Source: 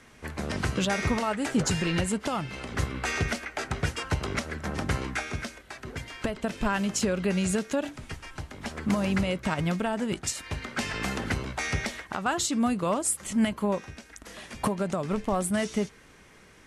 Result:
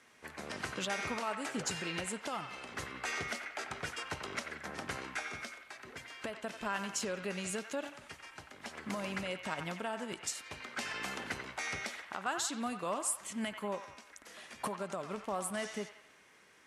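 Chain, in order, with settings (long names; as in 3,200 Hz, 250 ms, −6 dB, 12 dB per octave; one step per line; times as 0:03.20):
high-pass filter 480 Hz 6 dB per octave
delay with a band-pass on its return 91 ms, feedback 51%, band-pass 1,600 Hz, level −7 dB
level −7 dB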